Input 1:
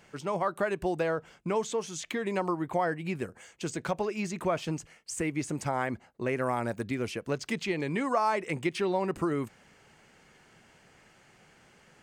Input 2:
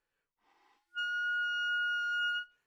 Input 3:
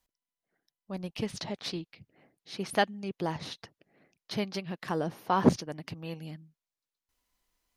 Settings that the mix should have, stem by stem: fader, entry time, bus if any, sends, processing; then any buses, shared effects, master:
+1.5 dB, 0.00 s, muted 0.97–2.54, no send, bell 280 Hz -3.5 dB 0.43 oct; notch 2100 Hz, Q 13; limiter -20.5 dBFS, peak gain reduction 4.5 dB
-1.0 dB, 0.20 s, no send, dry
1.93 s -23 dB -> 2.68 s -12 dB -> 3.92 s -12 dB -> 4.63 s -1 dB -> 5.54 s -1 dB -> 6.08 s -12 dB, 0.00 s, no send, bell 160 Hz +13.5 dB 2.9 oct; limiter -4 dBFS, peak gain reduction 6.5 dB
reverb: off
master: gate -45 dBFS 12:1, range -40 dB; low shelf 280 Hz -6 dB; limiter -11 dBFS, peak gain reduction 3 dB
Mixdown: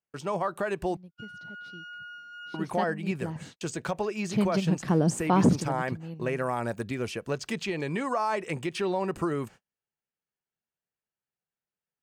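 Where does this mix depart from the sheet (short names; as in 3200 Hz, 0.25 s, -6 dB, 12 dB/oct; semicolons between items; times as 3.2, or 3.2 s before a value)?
stem 2 -1.0 dB -> -10.5 dB; master: missing low shelf 280 Hz -6 dB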